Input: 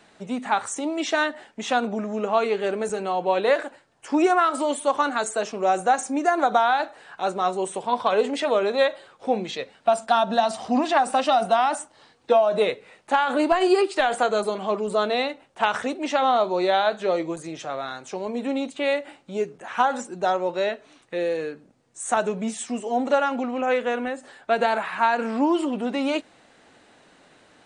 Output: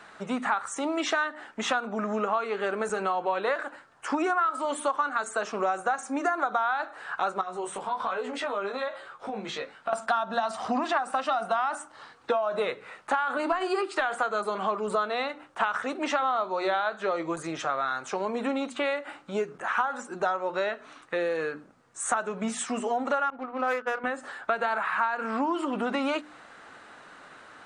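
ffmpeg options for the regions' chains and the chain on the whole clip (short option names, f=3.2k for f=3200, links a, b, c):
-filter_complex "[0:a]asettb=1/sr,asplit=3[a][b][c];[a]atrim=end=7.414[d];[b]atrim=start=7.41:end=9.93,asetpts=PTS-STARTPTS,afade=t=in:d=0.004:c=qsin,afade=t=out:st=2.516:d=0.004:c=qsin,acompressor=threshold=-29dB:ratio=4:attack=3.2:release=140:knee=1:detection=peak,flanger=delay=16:depth=4.2:speed=1.2[e];[c]atrim=start=9.926[f];[d][e]acrossfade=d=0.004:c1=hsin:c2=qsin[g];[g][f]acrossfade=d=0.004:c1=qsin:c2=hsin,asettb=1/sr,asplit=3[h][i][j];[h]atrim=end=23.304[k];[i]atrim=start=23.3:end=24.04,asetpts=PTS-STARTPTS,afade=t=in:d=0.004:c=qsin,afade=t=out:st=0.736:d=0.004:c=qsin,agate=range=-33dB:threshold=-22dB:ratio=3:release=100:detection=peak,bandreject=f=215.5:t=h:w=4,bandreject=f=431:t=h:w=4,bandreject=f=646.5:t=h:w=4,bandreject=f=862:t=h:w=4,bandreject=f=1.0775k:t=h:w=4,bandreject=f=1.293k:t=h:w=4,bandreject=f=1.5085k:t=h:w=4,bandreject=f=1.724k:t=h:w=4,bandreject=f=1.9395k:t=h:w=4,bandreject=f=2.155k:t=h:w=4,bandreject=f=2.3705k:t=h:w=4,bandreject=f=2.586k:t=h:w=4,bandreject=f=2.8015k:t=h:w=4,bandreject=f=3.017k:t=h:w=4,bandreject=f=3.2325k:t=h:w=4,bandreject=f=3.448k:t=h:w=4,bandreject=f=3.6635k:t=h:w=4,bandreject=f=3.879k:t=h:w=4,bandreject=f=4.0945k:t=h:w=4,bandreject=f=4.31k:t=h:w=4,bandreject=f=4.5255k:t=h:w=4,bandreject=f=4.741k:t=h:w=4,bandreject=f=4.9565k:t=h:w=4,bandreject=f=5.172k:t=h:w=4,bandreject=f=5.3875k:t=h:w=4,bandreject=f=5.603k:t=h:w=4,bandreject=f=5.8185k:t=h:w=4,bandreject=f=6.034k:t=h:w=4,bandreject=f=6.2495k:t=h:w=4,bandreject=f=6.465k:t=h:w=4,bandreject=f=6.6805k:t=h:w=4,bandreject=f=6.896k:t=h:w=4,adynamicsmooth=sensitivity=4.5:basefreq=1.2k[l];[j]atrim=start=24.036[m];[k][l]acrossfade=d=0.004:c1=hsin:c2=qsin[n];[n][m]acrossfade=d=0.004:c1=qsin:c2=hsin,equalizer=f=1.3k:t=o:w=1:g=13,bandreject=f=60:t=h:w=6,bandreject=f=120:t=h:w=6,bandreject=f=180:t=h:w=6,bandreject=f=240:t=h:w=6,bandreject=f=300:t=h:w=6,bandreject=f=360:t=h:w=6,acompressor=threshold=-25dB:ratio=5"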